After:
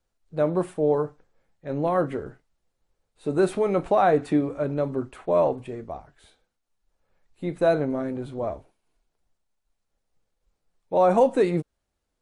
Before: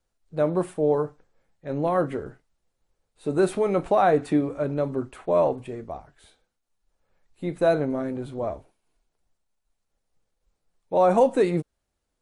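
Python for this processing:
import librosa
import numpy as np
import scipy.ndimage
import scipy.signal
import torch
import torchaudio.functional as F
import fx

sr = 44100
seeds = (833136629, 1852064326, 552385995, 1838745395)

y = fx.high_shelf(x, sr, hz=9100.0, db=-5.0)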